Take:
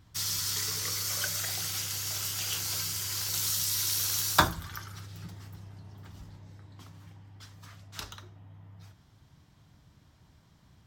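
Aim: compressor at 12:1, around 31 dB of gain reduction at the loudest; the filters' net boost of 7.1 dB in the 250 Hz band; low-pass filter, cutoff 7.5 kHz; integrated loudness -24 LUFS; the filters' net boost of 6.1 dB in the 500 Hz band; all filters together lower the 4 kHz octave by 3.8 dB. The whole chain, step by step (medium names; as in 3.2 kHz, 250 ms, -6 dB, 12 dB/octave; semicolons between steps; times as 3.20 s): low-pass 7.5 kHz; peaking EQ 250 Hz +8.5 dB; peaking EQ 500 Hz +6 dB; peaking EQ 4 kHz -4.5 dB; compression 12:1, threshold -47 dBFS; trim +26.5 dB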